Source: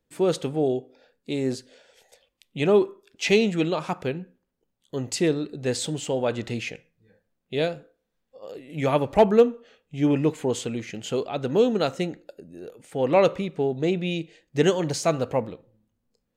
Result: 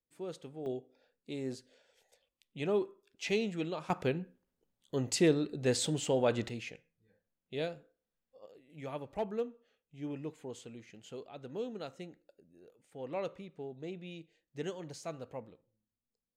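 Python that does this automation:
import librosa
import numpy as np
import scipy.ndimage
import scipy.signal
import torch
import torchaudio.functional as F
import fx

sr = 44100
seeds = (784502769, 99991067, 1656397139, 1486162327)

y = fx.gain(x, sr, db=fx.steps((0.0, -19.5), (0.66, -12.5), (3.9, -4.0), (6.49, -11.5), (8.46, -19.0)))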